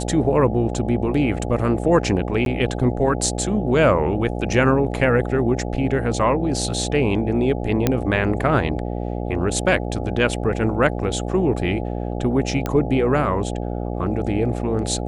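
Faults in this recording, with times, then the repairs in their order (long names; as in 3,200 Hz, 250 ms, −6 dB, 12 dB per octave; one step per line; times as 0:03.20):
mains buzz 60 Hz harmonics 14 −26 dBFS
0:02.45–0:02.46: drop-out 12 ms
0:07.87: click −4 dBFS
0:12.66: click −10 dBFS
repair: click removal
hum removal 60 Hz, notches 14
repair the gap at 0:02.45, 12 ms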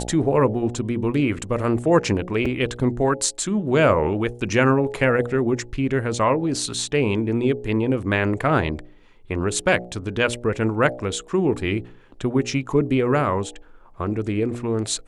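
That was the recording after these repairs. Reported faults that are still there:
none of them is left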